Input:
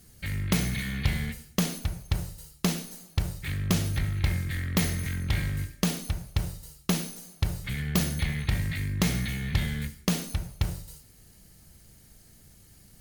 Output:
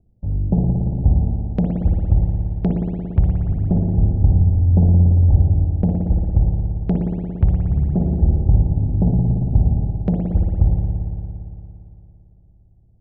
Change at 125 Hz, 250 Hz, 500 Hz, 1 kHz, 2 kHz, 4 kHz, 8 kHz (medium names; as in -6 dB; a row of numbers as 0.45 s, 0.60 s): +13.5 dB, +10.0 dB, +8.0 dB, +3.0 dB, under -15 dB, under -25 dB, under -40 dB